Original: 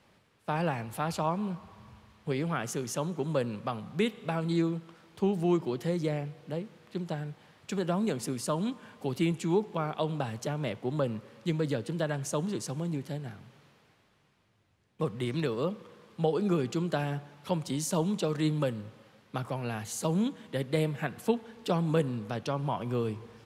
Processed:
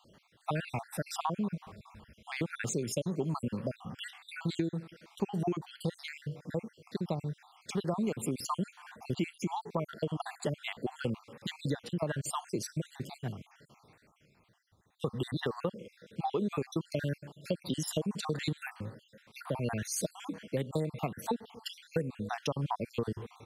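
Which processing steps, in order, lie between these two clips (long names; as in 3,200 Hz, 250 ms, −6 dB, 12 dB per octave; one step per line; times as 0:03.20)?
time-frequency cells dropped at random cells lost 58%
downward compressor 6 to 1, threshold −33 dBFS, peak gain reduction 11 dB
level +4.5 dB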